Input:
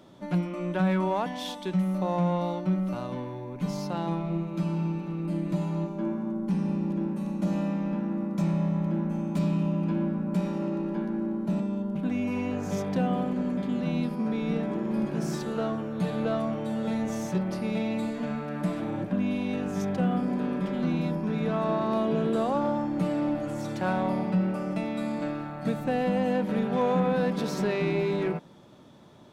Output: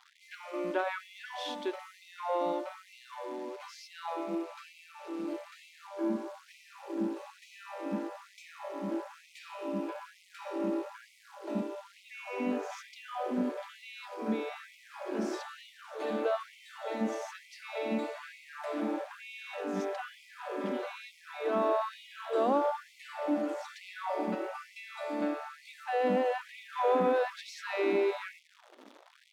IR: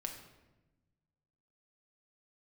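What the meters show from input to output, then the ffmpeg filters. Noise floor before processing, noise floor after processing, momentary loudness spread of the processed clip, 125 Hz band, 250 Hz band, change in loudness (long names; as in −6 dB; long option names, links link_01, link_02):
−38 dBFS, −60 dBFS, 18 LU, below −20 dB, −10.5 dB, −6.0 dB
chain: -af "acrusher=bits=9:dc=4:mix=0:aa=0.000001,aemphasis=mode=reproduction:type=50fm,afftfilt=real='re*gte(b*sr/1024,210*pow(2000/210,0.5+0.5*sin(2*PI*1.1*pts/sr)))':imag='im*gte(b*sr/1024,210*pow(2000/210,0.5+0.5*sin(2*PI*1.1*pts/sr)))':win_size=1024:overlap=0.75"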